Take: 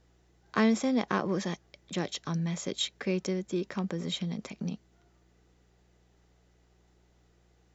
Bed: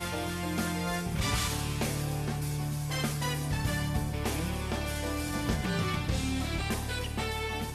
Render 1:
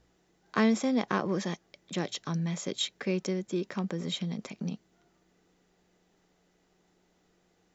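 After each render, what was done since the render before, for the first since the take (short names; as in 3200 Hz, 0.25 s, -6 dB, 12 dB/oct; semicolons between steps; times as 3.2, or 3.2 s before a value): de-hum 60 Hz, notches 2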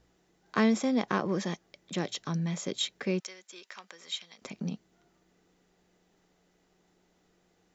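3.2–4.42 Bessel high-pass 1600 Hz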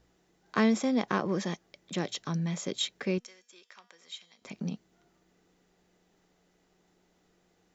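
3.18–4.47 resonator 240 Hz, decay 0.68 s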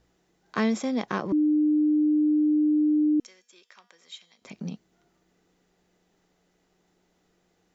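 1.32–3.2 bleep 302 Hz -18.5 dBFS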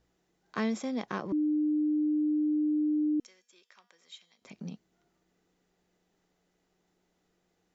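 gain -6 dB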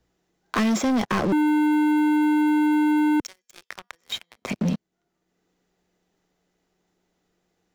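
sample leveller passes 5; three-band squash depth 40%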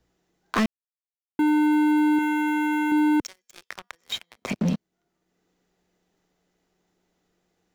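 0.66–1.39 mute; 2.18–2.92 comb 5.2 ms, depth 55%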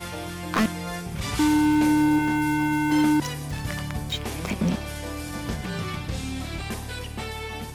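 add bed 0 dB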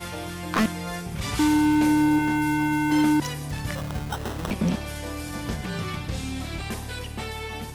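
3.75–4.51 sample-rate reducer 2300 Hz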